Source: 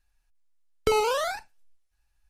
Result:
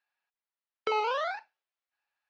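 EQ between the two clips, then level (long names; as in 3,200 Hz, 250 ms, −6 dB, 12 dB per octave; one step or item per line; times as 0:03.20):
band-pass filter 650–6,800 Hz
high-frequency loss of the air 240 metres
0.0 dB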